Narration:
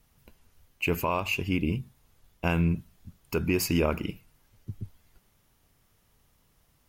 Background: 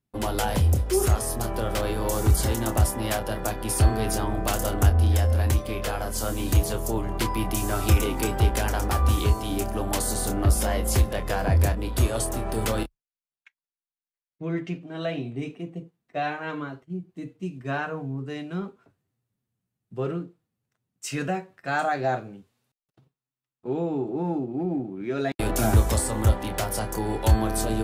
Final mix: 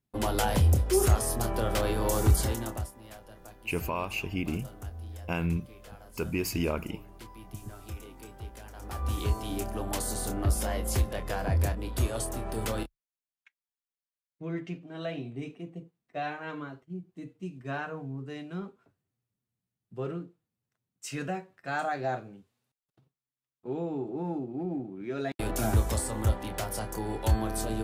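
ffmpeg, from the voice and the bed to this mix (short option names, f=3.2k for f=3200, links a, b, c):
-filter_complex "[0:a]adelay=2850,volume=-4.5dB[a];[1:a]volume=14dB,afade=t=out:st=2.24:d=0.67:silence=0.1,afade=t=in:st=8.74:d=0.61:silence=0.16788[b];[a][b]amix=inputs=2:normalize=0"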